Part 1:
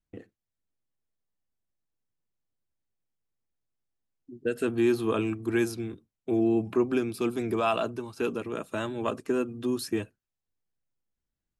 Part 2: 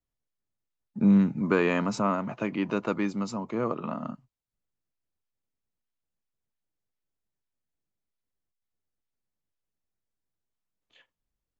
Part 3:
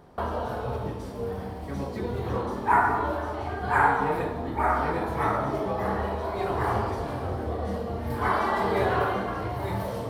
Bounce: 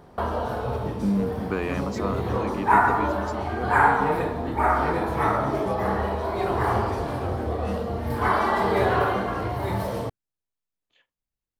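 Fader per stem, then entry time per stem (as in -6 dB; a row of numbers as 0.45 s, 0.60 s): -15.5 dB, -4.5 dB, +3.0 dB; 0.00 s, 0.00 s, 0.00 s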